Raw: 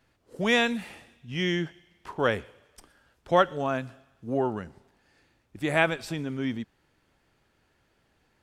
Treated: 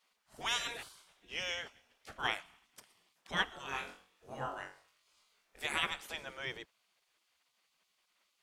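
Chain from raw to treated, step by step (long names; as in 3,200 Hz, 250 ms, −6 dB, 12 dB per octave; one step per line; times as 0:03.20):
gate on every frequency bin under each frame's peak −15 dB weak
0:03.66–0:05.67: flutter between parallel walls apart 3.7 metres, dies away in 0.33 s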